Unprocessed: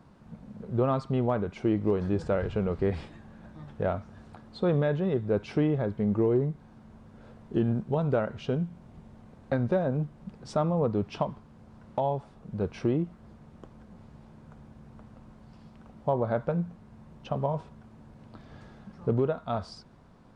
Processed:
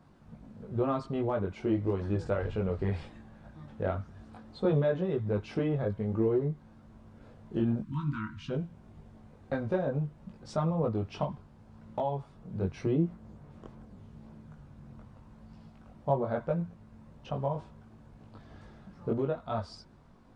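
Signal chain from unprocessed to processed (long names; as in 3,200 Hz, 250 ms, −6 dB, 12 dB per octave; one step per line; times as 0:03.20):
time-frequency box erased 0:07.82–0:08.50, 330–920 Hz
multi-voice chorus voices 4, 0.83 Hz, delay 20 ms, depth 2 ms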